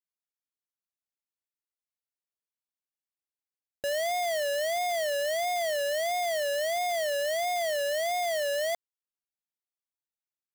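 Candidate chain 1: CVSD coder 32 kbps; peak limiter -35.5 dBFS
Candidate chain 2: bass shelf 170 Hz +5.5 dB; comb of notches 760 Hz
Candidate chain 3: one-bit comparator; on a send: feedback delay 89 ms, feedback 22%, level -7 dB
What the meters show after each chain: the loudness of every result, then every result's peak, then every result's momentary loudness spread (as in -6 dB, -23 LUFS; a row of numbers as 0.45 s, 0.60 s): -38.5 LUFS, -30.0 LUFS, -32.0 LUFS; -35.5 dBFS, -24.5 dBFS, -28.0 dBFS; 2 LU, 2 LU, 2 LU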